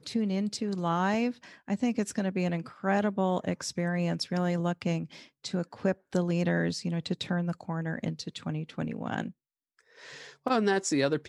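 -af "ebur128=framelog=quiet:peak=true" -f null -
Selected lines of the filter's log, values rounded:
Integrated loudness:
  I:         -30.6 LUFS
  Threshold: -41.0 LUFS
Loudness range:
  LRA:         4.8 LU
  Threshold: -51.3 LUFS
  LRA low:   -34.7 LUFS
  LRA high:  -30.0 LUFS
True peak:
  Peak:      -12.8 dBFS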